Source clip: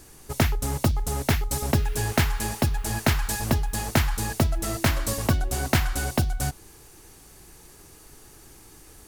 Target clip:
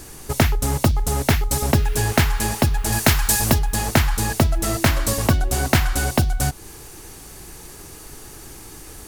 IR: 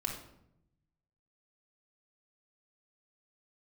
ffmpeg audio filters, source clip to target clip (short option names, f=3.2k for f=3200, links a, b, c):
-filter_complex "[0:a]asplit=2[a][b];[b]acompressor=threshold=-32dB:ratio=6,volume=2.5dB[c];[a][c]amix=inputs=2:normalize=0,asettb=1/sr,asplit=3[d][e][f];[d]atrim=end=2.924[g];[e]atrim=start=2.92:end=3.59,asetpts=PTS-STARTPTS,afade=t=in:d=0.004:c=qsin,afade=t=out:st=0.666:d=0.004:c=qsin,highshelf=f=4.2k:g=7[h];[f]atrim=start=3.586[i];[g][h]acrossfade=d=0.004:c1=hsin:c2=qsin[j];[j][i]acrossfade=d=0.004:c1=qsin:c2=hsin,volume=2.5dB"